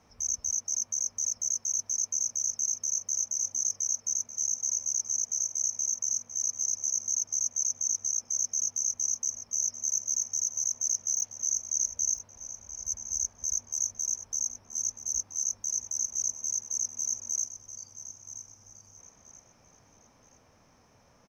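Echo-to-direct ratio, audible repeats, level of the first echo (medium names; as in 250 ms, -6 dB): -12.0 dB, 3, -12.5 dB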